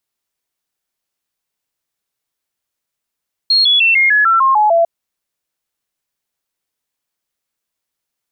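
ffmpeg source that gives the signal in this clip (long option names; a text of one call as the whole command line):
ffmpeg -f lavfi -i "aevalsrc='0.398*clip(min(mod(t,0.15),0.15-mod(t,0.15))/0.005,0,1)*sin(2*PI*4270*pow(2,-floor(t/0.15)/3)*mod(t,0.15))':duration=1.35:sample_rate=44100" out.wav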